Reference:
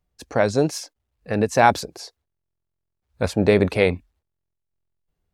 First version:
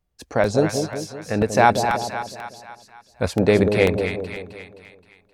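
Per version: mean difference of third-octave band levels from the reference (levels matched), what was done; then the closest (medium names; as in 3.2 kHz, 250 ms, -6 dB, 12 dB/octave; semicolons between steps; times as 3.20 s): 6.0 dB: on a send: two-band feedback delay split 800 Hz, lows 187 ms, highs 262 ms, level -6 dB; on the sum: crackling interface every 0.49 s, samples 64, repeat, from 0.44 s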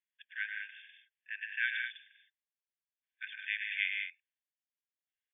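22.5 dB: in parallel at -8.5 dB: hard clipper -15.5 dBFS, distortion -8 dB; on the sum: brick-wall FIR band-pass 1.5–3.6 kHz; loudspeakers at several distances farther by 36 m -7 dB, 52 m -7 dB, 69 m -8 dB; trim -8.5 dB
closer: first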